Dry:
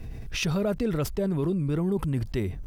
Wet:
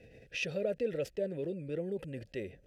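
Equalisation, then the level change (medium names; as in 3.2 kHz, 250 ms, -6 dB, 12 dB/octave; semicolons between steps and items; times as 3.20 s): vowel filter e; tone controls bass +7 dB, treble +11 dB; band-stop 1.8 kHz, Q 18; +4.0 dB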